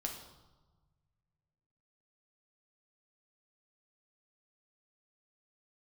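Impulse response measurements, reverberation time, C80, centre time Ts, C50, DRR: 1.3 s, 9.0 dB, 31 ms, 6.0 dB, 1.5 dB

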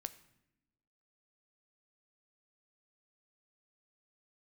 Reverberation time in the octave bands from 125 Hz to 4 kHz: 1.2, 1.4, 0.95, 0.75, 0.80, 0.65 seconds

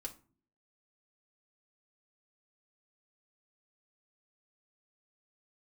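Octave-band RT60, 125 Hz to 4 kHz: 0.65, 0.70, 0.45, 0.40, 0.30, 0.25 seconds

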